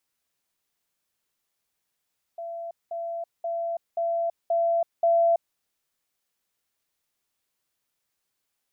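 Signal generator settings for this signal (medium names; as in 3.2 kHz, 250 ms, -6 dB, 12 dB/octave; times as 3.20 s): level ladder 675 Hz -32 dBFS, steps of 3 dB, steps 6, 0.33 s 0.20 s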